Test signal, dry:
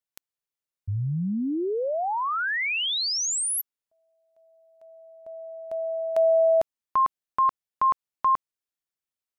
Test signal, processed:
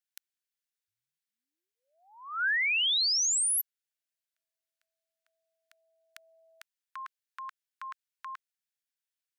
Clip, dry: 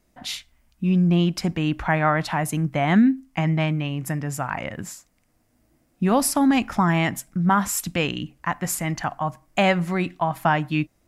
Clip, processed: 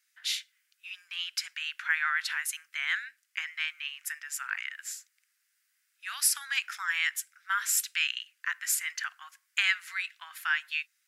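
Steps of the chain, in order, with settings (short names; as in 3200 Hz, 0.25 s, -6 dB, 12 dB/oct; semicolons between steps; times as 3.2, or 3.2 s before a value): elliptic high-pass 1500 Hz, stop band 70 dB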